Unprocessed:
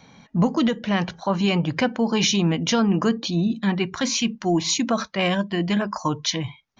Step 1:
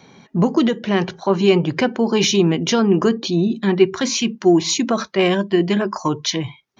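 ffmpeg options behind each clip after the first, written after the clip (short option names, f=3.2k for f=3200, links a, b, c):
-af "acontrast=27,highpass=92,equalizer=f=380:w=5.3:g=13.5,volume=-2.5dB"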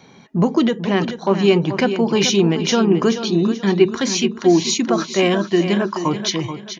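-af "aecho=1:1:432|864|1296|1728:0.316|0.104|0.0344|0.0114"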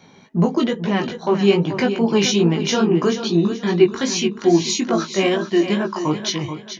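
-af "flanger=delay=17.5:depth=2.9:speed=2.4,volume=1.5dB"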